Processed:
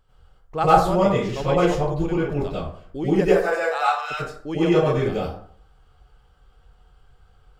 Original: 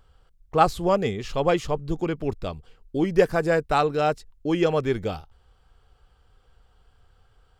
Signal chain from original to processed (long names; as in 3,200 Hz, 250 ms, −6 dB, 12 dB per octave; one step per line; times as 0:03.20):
0:03.21–0:04.10: high-pass filter 330 Hz → 1,300 Hz 24 dB per octave
dense smooth reverb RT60 0.56 s, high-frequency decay 0.55×, pre-delay 80 ms, DRR −8.5 dB
level −6 dB